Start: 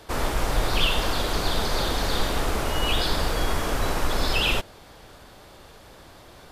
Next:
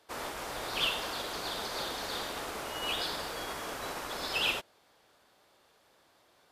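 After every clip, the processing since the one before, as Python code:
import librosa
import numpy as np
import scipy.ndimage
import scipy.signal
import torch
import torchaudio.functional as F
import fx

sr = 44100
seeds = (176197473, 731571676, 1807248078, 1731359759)

y = fx.highpass(x, sr, hz=440.0, slope=6)
y = fx.upward_expand(y, sr, threshold_db=-43.0, expansion=1.5)
y = y * librosa.db_to_amplitude(-5.0)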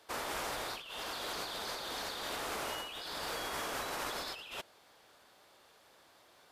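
y = fx.low_shelf(x, sr, hz=480.0, db=-3.5)
y = fx.over_compress(y, sr, threshold_db=-41.0, ratio=-1.0)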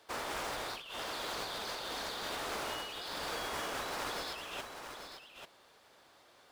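y = scipy.ndimage.median_filter(x, 3, mode='constant')
y = y + 10.0 ** (-8.0 / 20.0) * np.pad(y, (int(841 * sr / 1000.0), 0))[:len(y)]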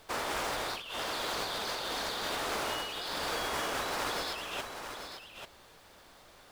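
y = fx.dmg_noise_colour(x, sr, seeds[0], colour='pink', level_db=-67.0)
y = y * librosa.db_to_amplitude(4.5)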